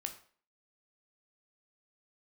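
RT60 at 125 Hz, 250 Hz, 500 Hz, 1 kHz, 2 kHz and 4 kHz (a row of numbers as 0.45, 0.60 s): 0.35, 0.45, 0.50, 0.45, 0.45, 0.40 s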